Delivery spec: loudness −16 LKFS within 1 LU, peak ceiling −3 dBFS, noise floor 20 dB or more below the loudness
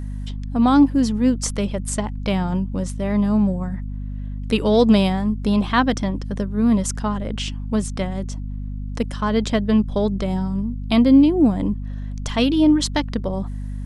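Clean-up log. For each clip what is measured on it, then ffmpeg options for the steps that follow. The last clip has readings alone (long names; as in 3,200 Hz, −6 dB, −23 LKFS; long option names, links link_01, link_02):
mains hum 50 Hz; hum harmonics up to 250 Hz; level of the hum −26 dBFS; integrated loudness −20.0 LKFS; sample peak −4.0 dBFS; target loudness −16.0 LKFS
→ -af "bandreject=frequency=50:width_type=h:width=4,bandreject=frequency=100:width_type=h:width=4,bandreject=frequency=150:width_type=h:width=4,bandreject=frequency=200:width_type=h:width=4,bandreject=frequency=250:width_type=h:width=4"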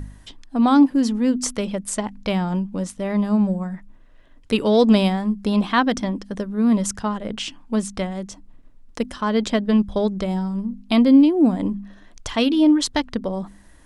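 mains hum none found; integrated loudness −20.5 LKFS; sample peak −5.0 dBFS; target loudness −16.0 LKFS
→ -af "volume=4.5dB,alimiter=limit=-3dB:level=0:latency=1"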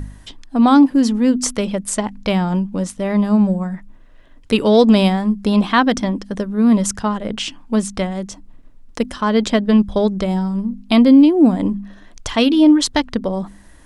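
integrated loudness −16.5 LKFS; sample peak −3.0 dBFS; background noise floor −44 dBFS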